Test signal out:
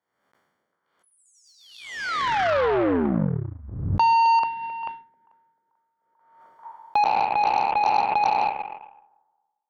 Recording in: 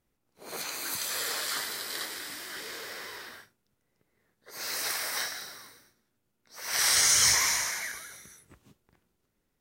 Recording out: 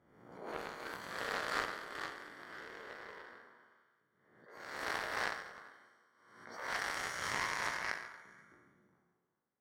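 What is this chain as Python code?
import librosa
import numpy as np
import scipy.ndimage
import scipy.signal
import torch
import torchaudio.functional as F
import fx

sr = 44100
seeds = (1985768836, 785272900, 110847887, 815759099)

p1 = fx.spec_trails(x, sr, decay_s=1.42)
p2 = scipy.signal.sosfilt(scipy.signal.butter(2, 100.0, 'highpass', fs=sr, output='sos'), p1)
p3 = fx.low_shelf(p2, sr, hz=230.0, db=-5.0)
p4 = fx.over_compress(p3, sr, threshold_db=-27.0, ratio=-0.5)
p5 = p3 + (p4 * 10.0 ** (-2.0 / 20.0))
p6 = scipy.signal.savgol_filter(p5, 41, 4, mode='constant')
p7 = p6 + fx.echo_stepped(p6, sr, ms=132, hz=170.0, octaves=1.4, feedback_pct=70, wet_db=-3.0, dry=0)
p8 = fx.cheby_harmonics(p7, sr, harmonics=(3, 4, 5, 7), levels_db=(-23, -41, -33, -19), full_scale_db=-10.5)
y = fx.pre_swell(p8, sr, db_per_s=60.0)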